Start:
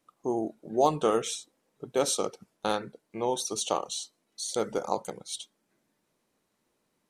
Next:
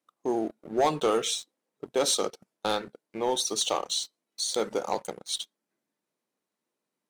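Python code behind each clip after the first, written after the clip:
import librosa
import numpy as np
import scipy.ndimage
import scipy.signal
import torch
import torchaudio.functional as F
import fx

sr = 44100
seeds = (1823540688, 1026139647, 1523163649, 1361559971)

y = scipy.signal.sosfilt(scipy.signal.butter(2, 180.0, 'highpass', fs=sr, output='sos'), x)
y = fx.dynamic_eq(y, sr, hz=3800.0, q=1.6, threshold_db=-49.0, ratio=4.0, max_db=6)
y = fx.leveller(y, sr, passes=2)
y = y * 10.0 ** (-5.5 / 20.0)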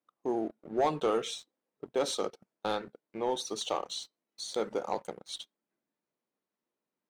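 y = fx.high_shelf(x, sr, hz=4400.0, db=-11.5)
y = y * 10.0 ** (-3.5 / 20.0)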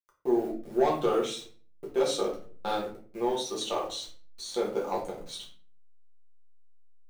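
y = fx.delta_hold(x, sr, step_db=-51.0)
y = fx.room_shoebox(y, sr, seeds[0], volume_m3=34.0, walls='mixed', distance_m=0.87)
y = y * 10.0 ** (-3.0 / 20.0)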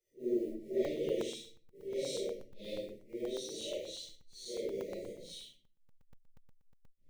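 y = fx.phase_scramble(x, sr, seeds[1], window_ms=200)
y = fx.brickwall_bandstop(y, sr, low_hz=650.0, high_hz=1800.0)
y = fx.buffer_crackle(y, sr, first_s=0.85, period_s=0.12, block=128, kind='zero')
y = y * 10.0 ** (-7.5 / 20.0)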